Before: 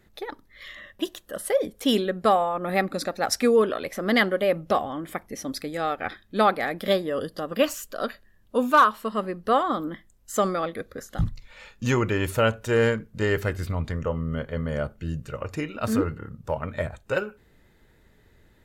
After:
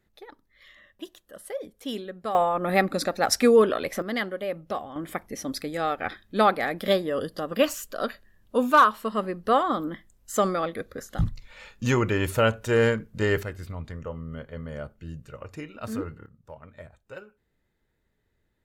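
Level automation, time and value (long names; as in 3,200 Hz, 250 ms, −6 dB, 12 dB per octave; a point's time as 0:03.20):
−11 dB
from 0:02.35 +2 dB
from 0:04.02 −8 dB
from 0:04.96 0 dB
from 0:13.43 −8 dB
from 0:16.26 −16 dB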